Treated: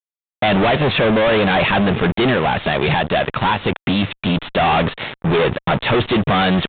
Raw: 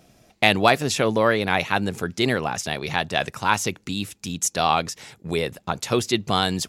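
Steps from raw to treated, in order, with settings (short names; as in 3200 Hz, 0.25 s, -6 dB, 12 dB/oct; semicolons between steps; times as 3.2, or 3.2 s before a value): bell 590 Hz +4.5 dB 0.26 oct; 2.3–4.26 compressor 4:1, threshold -26 dBFS, peak gain reduction 11 dB; fuzz box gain 39 dB, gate -42 dBFS; downsampling 8000 Hz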